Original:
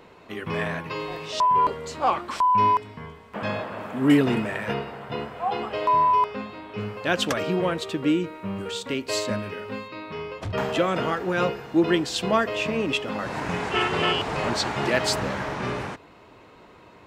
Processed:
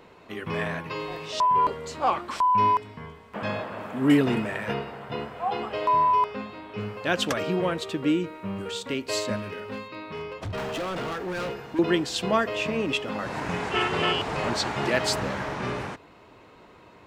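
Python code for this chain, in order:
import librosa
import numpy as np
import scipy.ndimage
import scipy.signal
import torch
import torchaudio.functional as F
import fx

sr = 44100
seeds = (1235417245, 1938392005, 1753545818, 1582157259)

y = fx.overload_stage(x, sr, gain_db=27.0, at=(9.36, 11.79))
y = y * 10.0 ** (-1.5 / 20.0)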